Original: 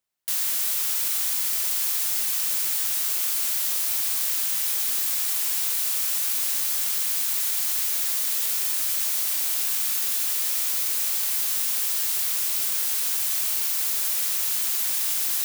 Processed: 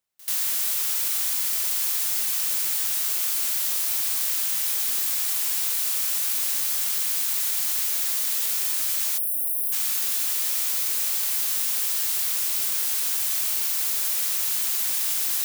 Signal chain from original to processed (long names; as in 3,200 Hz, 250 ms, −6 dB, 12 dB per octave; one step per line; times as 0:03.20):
time-frequency box erased 0:09.18–0:09.72, 760–8,800 Hz
echo ahead of the sound 86 ms −21 dB